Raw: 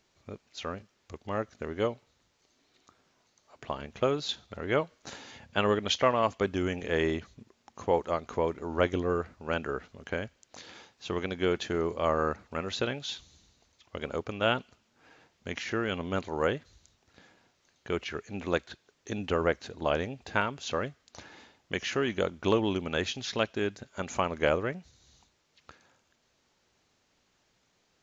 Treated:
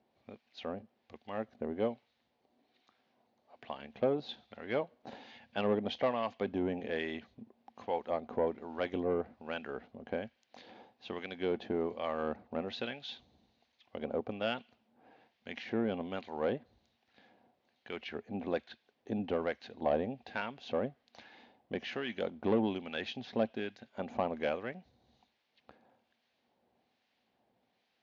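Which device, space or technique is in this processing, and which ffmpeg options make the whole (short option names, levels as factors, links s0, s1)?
guitar amplifier with harmonic tremolo: -filter_complex "[0:a]acrossover=split=1200[s0][s1];[s0]aeval=exprs='val(0)*(1-0.7/2+0.7/2*cos(2*PI*1.2*n/s))':c=same[s2];[s1]aeval=exprs='val(0)*(1-0.7/2-0.7/2*cos(2*PI*1.2*n/s))':c=same[s3];[s2][s3]amix=inputs=2:normalize=0,asoftclip=type=tanh:threshold=0.0794,highpass=87,equalizer=f=88:t=q:w=4:g=-5,equalizer=f=160:t=q:w=4:g=-4,equalizer=f=230:t=q:w=4:g=9,equalizer=f=520:t=q:w=4:g=4,equalizer=f=750:t=q:w=4:g=9,equalizer=f=1300:t=q:w=4:g=-6,lowpass=f=4200:w=0.5412,lowpass=f=4200:w=1.3066,volume=0.708"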